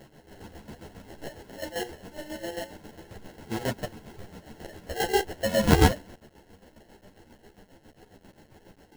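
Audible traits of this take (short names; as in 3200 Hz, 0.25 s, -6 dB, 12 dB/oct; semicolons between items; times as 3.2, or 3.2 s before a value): aliases and images of a low sample rate 1200 Hz, jitter 0%; chopped level 7.4 Hz, depth 65%, duty 45%; a quantiser's noise floor 10-bit, dither none; a shimmering, thickened sound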